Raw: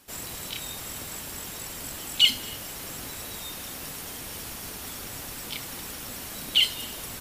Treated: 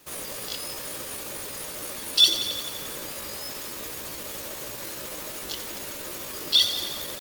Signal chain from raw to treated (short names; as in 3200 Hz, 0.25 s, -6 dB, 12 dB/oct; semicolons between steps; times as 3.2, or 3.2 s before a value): band inversion scrambler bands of 500 Hz; pitch shift +4 st; lo-fi delay 88 ms, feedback 80%, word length 7-bit, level -11 dB; gain +2 dB